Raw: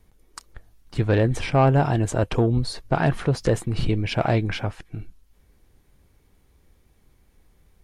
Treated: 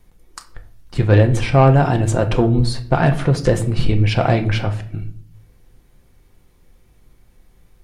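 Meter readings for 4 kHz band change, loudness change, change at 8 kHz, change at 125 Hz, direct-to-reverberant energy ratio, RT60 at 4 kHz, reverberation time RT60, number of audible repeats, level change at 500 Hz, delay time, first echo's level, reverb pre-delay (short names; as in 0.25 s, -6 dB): +5.0 dB, +6.0 dB, +4.5 dB, +7.0 dB, 5.5 dB, 0.40 s, 0.60 s, none, +5.0 dB, none, none, 4 ms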